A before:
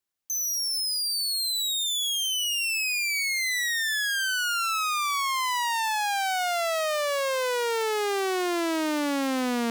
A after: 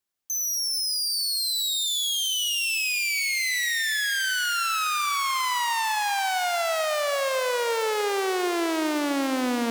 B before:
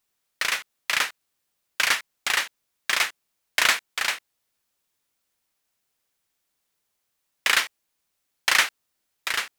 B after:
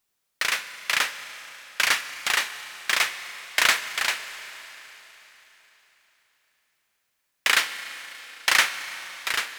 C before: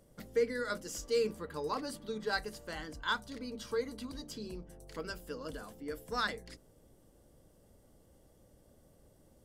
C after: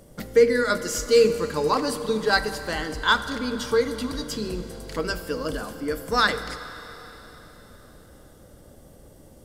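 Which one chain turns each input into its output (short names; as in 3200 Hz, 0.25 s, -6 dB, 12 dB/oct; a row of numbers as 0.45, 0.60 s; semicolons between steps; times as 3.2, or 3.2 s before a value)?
Schroeder reverb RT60 4 s, combs from 32 ms, DRR 10.5 dB; match loudness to -24 LUFS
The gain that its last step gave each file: +1.0, 0.0, +13.5 dB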